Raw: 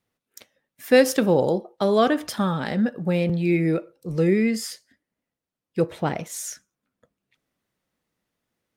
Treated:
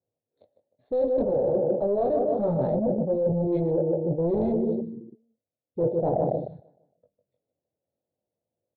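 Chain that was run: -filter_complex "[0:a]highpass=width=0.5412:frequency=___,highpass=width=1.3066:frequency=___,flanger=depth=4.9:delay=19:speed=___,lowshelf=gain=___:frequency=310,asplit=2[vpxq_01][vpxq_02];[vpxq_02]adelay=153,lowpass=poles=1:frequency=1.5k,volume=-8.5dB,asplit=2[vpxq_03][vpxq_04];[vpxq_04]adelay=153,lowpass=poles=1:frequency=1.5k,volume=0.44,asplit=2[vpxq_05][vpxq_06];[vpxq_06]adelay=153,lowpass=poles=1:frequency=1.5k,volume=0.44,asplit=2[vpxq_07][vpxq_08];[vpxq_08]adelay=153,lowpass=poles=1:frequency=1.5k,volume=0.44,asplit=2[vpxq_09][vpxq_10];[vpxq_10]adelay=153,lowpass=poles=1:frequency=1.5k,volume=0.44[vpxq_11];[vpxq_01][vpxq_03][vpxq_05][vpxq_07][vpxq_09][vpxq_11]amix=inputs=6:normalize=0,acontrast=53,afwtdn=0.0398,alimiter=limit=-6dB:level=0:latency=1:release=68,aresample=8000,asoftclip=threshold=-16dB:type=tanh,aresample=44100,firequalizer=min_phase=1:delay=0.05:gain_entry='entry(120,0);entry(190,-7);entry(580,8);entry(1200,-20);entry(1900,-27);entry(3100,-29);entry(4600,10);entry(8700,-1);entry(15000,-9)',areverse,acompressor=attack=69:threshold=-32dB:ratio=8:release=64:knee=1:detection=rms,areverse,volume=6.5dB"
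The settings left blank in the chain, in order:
77, 77, 0.59, 2.5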